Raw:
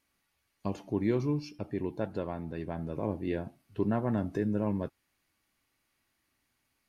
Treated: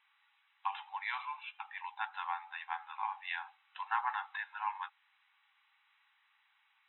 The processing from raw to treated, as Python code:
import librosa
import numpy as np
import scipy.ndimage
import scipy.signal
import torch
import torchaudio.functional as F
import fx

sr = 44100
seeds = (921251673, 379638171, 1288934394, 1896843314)

y = fx.brickwall_bandpass(x, sr, low_hz=760.0, high_hz=4000.0)
y = y * librosa.db_to_amplitude(8.5)